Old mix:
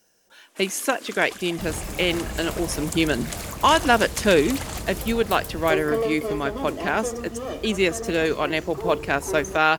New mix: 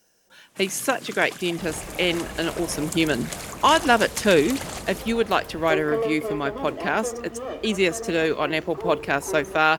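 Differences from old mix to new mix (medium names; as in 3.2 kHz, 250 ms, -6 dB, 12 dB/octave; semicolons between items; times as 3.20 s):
first sound: remove steep high-pass 250 Hz 48 dB/octave; second sound: add tone controls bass -8 dB, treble -12 dB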